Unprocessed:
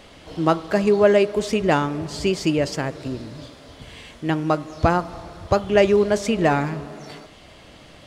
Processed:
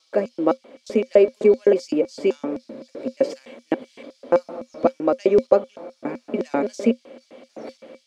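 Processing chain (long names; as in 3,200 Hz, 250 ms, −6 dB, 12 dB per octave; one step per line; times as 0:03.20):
slices reordered back to front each 288 ms, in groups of 3
automatic gain control gain up to 5 dB
auto-filter high-pass square 3.9 Hz 380–5,300 Hz
high-shelf EQ 3,200 Hz −11 dB
hollow resonant body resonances 240/530/2,300 Hz, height 17 dB, ringing for 95 ms
level −7 dB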